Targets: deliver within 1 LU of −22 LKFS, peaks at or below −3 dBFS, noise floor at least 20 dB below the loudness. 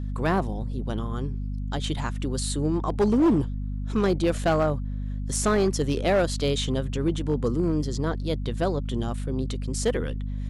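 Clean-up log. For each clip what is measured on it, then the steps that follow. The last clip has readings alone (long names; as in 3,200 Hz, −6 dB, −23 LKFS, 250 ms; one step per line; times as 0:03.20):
share of clipped samples 1.2%; peaks flattened at −16.0 dBFS; mains hum 50 Hz; hum harmonics up to 250 Hz; level of the hum −28 dBFS; integrated loudness −26.5 LKFS; sample peak −16.0 dBFS; target loudness −22.0 LKFS
→ clipped peaks rebuilt −16 dBFS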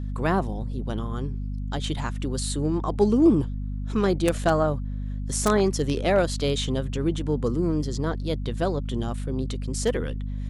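share of clipped samples 0.0%; mains hum 50 Hz; hum harmonics up to 250 Hz; level of the hum −27 dBFS
→ mains-hum notches 50/100/150/200/250 Hz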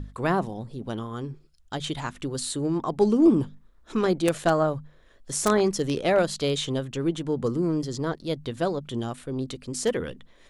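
mains hum none found; integrated loudness −26.5 LKFS; sample peak −6.5 dBFS; target loudness −22.0 LKFS
→ level +4.5 dB
brickwall limiter −3 dBFS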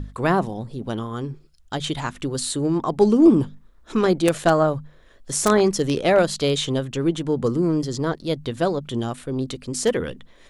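integrated loudness −22.0 LKFS; sample peak −3.0 dBFS; background noise floor −52 dBFS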